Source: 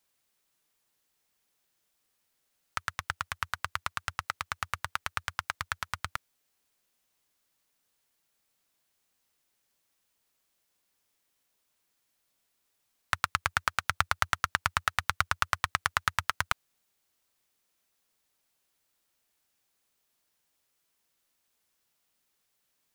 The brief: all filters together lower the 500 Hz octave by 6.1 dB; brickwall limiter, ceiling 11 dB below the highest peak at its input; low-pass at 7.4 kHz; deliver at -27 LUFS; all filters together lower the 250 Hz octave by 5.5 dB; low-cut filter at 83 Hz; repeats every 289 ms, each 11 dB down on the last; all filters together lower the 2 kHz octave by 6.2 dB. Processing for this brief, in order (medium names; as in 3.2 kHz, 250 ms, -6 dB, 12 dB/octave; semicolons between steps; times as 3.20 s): high-pass 83 Hz; low-pass 7.4 kHz; peaking EQ 250 Hz -8.5 dB; peaking EQ 500 Hz -6.5 dB; peaking EQ 2 kHz -8 dB; peak limiter -18 dBFS; feedback delay 289 ms, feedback 28%, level -11 dB; trim +16.5 dB